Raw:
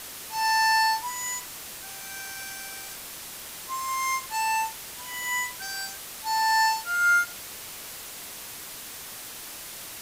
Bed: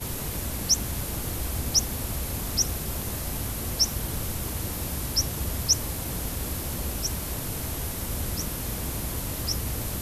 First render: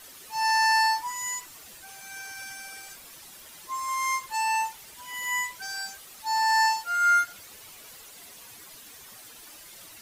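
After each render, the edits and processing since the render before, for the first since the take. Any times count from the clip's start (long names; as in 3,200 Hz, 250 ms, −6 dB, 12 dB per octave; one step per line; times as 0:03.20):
broadband denoise 11 dB, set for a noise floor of −41 dBFS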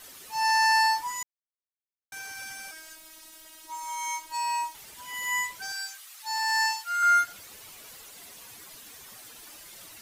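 0:01.23–0:02.12: silence
0:02.71–0:04.75: phases set to zero 317 Hz
0:05.72–0:07.03: high-pass filter 1,200 Hz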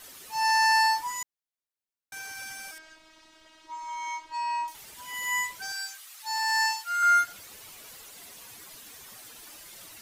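0:02.78–0:04.68: high-frequency loss of the air 150 metres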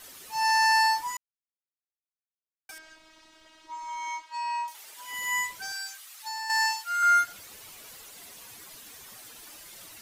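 0:01.17–0:02.69: silence
0:04.21–0:05.09: high-pass filter 920 Hz → 420 Hz
0:05.62–0:06.50: downward compressor, threshold −31 dBFS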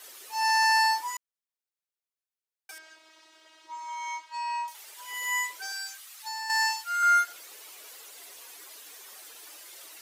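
Chebyshev high-pass filter 370 Hz, order 3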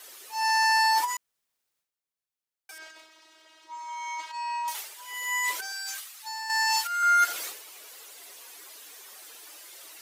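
transient designer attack −1 dB, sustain +12 dB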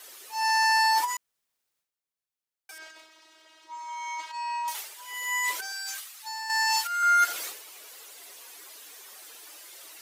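no processing that can be heard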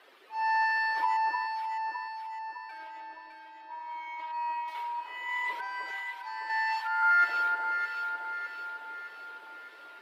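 high-frequency loss of the air 430 metres
delay that swaps between a low-pass and a high-pass 305 ms, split 1,400 Hz, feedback 73%, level −2 dB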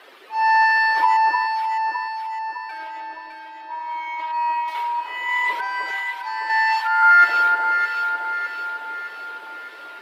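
level +11 dB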